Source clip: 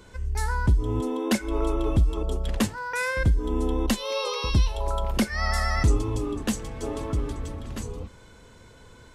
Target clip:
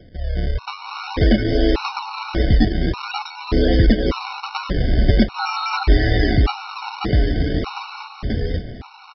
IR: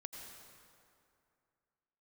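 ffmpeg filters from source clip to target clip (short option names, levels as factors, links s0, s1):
-af "acontrast=83,aresample=11025,acrusher=samples=12:mix=1:aa=0.000001:lfo=1:lforange=19.2:lforate=0.49,aresample=44100,aecho=1:1:536|1072|1608:0.708|0.127|0.0229,dynaudnorm=f=120:g=17:m=6.31,afftfilt=real='re*gt(sin(2*PI*0.85*pts/sr)*(1-2*mod(floor(b*sr/1024/740),2)),0)':imag='im*gt(sin(2*PI*0.85*pts/sr)*(1-2*mod(floor(b*sr/1024/740),2)),0)':win_size=1024:overlap=0.75,volume=0.794"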